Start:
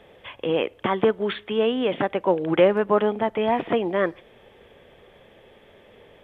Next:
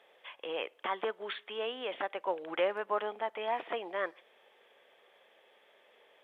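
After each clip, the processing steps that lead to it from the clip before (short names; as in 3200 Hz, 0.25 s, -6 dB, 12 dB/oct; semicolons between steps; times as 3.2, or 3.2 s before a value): HPF 650 Hz 12 dB/oct; gain -8 dB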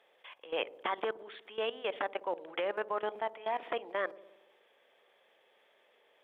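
level quantiser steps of 18 dB; dark delay 60 ms, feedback 69%, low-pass 530 Hz, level -13.5 dB; gain +4 dB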